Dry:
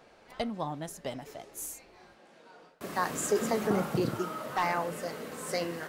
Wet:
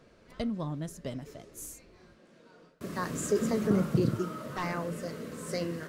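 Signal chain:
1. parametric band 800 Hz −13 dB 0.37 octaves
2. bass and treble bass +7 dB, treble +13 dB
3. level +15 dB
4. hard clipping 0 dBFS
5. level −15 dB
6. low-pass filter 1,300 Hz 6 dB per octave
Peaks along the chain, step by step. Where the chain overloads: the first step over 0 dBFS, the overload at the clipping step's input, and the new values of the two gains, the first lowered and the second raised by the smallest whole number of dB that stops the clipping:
−17.0, −10.0, +5.0, 0.0, −15.0, −15.0 dBFS
step 3, 5.0 dB
step 3 +10 dB, step 5 −10 dB

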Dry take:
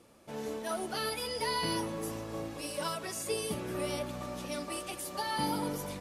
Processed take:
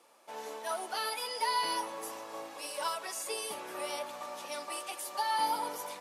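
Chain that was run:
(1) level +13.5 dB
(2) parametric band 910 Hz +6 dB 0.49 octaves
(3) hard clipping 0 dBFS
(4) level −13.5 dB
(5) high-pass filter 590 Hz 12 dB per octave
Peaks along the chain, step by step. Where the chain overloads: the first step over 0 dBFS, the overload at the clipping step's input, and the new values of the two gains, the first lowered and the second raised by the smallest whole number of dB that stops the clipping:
−7.5, −5.0, −5.0, −18.5, −20.0 dBFS
no step passes full scale

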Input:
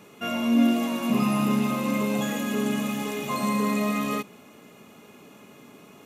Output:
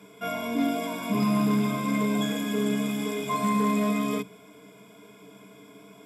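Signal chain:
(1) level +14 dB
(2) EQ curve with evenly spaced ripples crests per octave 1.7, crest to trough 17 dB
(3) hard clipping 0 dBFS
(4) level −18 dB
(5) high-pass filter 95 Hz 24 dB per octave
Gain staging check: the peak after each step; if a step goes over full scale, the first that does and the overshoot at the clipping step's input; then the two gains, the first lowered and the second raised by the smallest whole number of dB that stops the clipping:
+3.0, +4.0, 0.0, −18.0, −13.0 dBFS
step 1, 4.0 dB
step 1 +10 dB, step 4 −14 dB

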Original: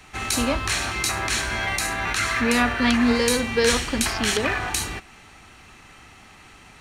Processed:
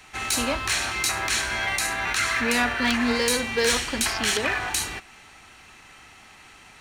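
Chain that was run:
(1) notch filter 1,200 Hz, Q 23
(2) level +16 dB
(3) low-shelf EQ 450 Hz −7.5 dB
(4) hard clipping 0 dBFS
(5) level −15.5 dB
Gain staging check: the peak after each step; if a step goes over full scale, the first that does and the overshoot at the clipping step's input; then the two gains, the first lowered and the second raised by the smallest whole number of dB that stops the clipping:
−6.5, +9.5, +9.0, 0.0, −15.5 dBFS
step 2, 9.0 dB
step 2 +7 dB, step 5 −6.5 dB

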